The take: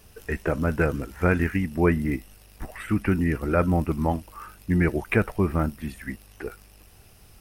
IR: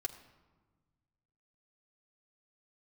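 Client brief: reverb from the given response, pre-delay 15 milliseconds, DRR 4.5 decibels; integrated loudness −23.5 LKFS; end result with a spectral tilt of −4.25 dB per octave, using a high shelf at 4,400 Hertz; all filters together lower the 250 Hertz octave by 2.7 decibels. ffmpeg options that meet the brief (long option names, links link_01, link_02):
-filter_complex "[0:a]equalizer=frequency=250:width_type=o:gain=-4,highshelf=frequency=4400:gain=4.5,asplit=2[link_01][link_02];[1:a]atrim=start_sample=2205,adelay=15[link_03];[link_02][link_03]afir=irnorm=-1:irlink=0,volume=-4dB[link_04];[link_01][link_04]amix=inputs=2:normalize=0,volume=2dB"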